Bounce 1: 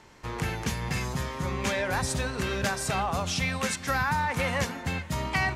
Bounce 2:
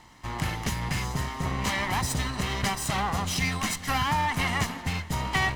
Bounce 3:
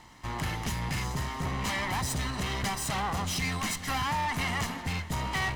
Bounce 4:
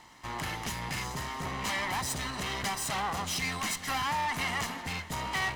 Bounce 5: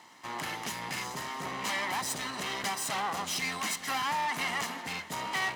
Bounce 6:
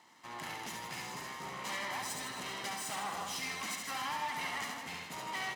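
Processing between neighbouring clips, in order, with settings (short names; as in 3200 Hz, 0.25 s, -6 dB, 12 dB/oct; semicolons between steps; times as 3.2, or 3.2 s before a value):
minimum comb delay 1 ms; gain +2 dB
soft clip -25.5 dBFS, distortion -12 dB
low shelf 210 Hz -9.5 dB
HPF 200 Hz 12 dB/oct
reverse bouncing-ball echo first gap 70 ms, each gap 1.25×, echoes 5; gain -8 dB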